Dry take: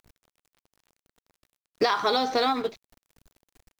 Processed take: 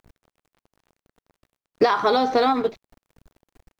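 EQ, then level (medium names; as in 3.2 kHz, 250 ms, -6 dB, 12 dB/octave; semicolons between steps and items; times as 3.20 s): treble shelf 2.2 kHz -11 dB; +6.5 dB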